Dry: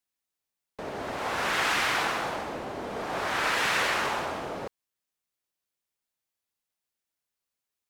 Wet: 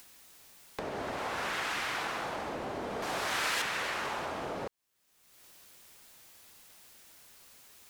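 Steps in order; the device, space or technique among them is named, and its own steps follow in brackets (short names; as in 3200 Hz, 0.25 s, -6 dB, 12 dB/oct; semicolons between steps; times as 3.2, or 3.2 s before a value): upward and downward compression (upward compressor, threshold -32 dBFS; compressor 3:1, threshold -34 dBFS, peak gain reduction 8.5 dB); 3.02–3.62 high shelf 2900 Hz +10.5 dB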